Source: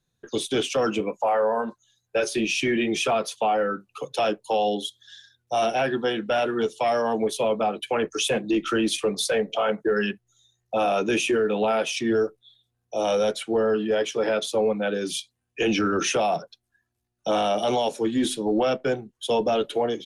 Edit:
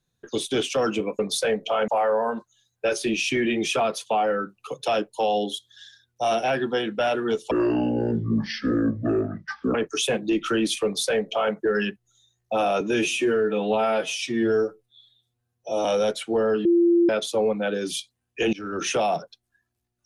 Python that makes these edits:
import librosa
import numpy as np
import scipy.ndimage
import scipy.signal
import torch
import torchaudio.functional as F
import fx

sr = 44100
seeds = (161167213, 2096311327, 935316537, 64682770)

y = fx.edit(x, sr, fx.speed_span(start_s=6.82, length_s=1.14, speed=0.51),
    fx.duplicate(start_s=9.06, length_s=0.69, to_s=1.19),
    fx.stretch_span(start_s=11.02, length_s=2.03, factor=1.5),
    fx.bleep(start_s=13.85, length_s=0.44, hz=343.0, db=-14.5),
    fx.fade_in_from(start_s=15.73, length_s=0.45, floor_db=-23.0), tone=tone)